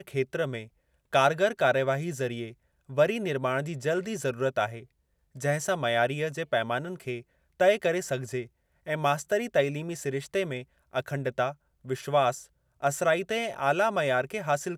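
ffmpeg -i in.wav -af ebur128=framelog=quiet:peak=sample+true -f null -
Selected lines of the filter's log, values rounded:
Integrated loudness:
  I:         -28.3 LUFS
  Threshold: -38.7 LUFS
Loudness range:
  LRA:         2.8 LU
  Threshold: -49.1 LUFS
  LRA low:   -30.5 LUFS
  LRA high:  -27.6 LUFS
Sample peak:
  Peak:       -9.6 dBFS
True peak:
  Peak:       -9.5 dBFS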